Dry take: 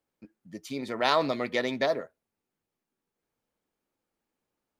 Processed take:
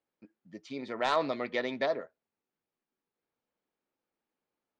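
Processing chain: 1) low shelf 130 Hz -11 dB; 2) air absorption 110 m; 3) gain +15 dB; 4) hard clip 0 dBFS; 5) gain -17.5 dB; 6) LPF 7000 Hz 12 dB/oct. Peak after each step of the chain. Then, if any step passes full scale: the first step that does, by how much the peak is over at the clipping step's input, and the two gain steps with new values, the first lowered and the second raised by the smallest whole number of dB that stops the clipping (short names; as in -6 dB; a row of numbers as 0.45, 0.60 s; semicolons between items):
-7.5, -9.0, +6.0, 0.0, -17.5, -17.0 dBFS; step 3, 6.0 dB; step 3 +9 dB, step 5 -11.5 dB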